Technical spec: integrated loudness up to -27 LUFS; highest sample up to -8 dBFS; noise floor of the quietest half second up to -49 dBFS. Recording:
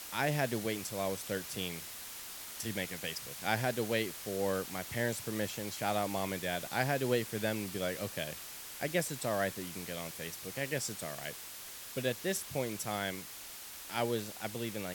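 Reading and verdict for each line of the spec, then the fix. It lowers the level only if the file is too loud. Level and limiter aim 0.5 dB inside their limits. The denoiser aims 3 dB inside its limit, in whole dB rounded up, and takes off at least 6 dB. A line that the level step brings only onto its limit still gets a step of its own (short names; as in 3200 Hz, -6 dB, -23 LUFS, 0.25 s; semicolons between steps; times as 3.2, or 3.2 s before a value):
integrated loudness -36.0 LUFS: OK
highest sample -14.5 dBFS: OK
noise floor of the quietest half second -47 dBFS: fail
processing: denoiser 6 dB, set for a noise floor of -47 dBFS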